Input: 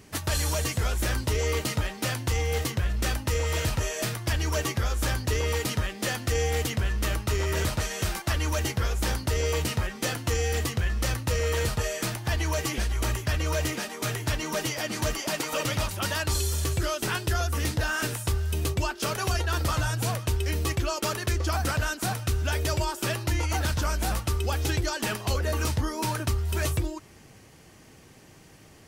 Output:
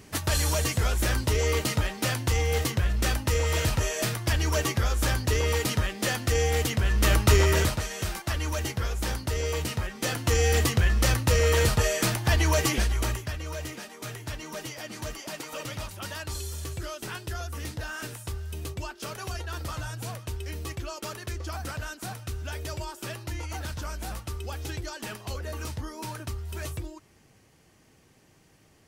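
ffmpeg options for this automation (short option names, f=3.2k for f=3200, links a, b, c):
-af "volume=15.5dB,afade=t=in:st=6.82:d=0.47:silence=0.446684,afade=t=out:st=7.29:d=0.52:silence=0.281838,afade=t=in:st=9.93:d=0.55:silence=0.446684,afade=t=out:st=12.67:d=0.68:silence=0.237137"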